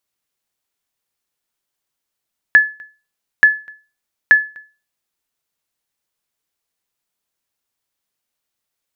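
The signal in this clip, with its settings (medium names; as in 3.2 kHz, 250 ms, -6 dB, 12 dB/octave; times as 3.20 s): sonar ping 1.72 kHz, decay 0.32 s, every 0.88 s, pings 3, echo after 0.25 s, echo -29 dB -1 dBFS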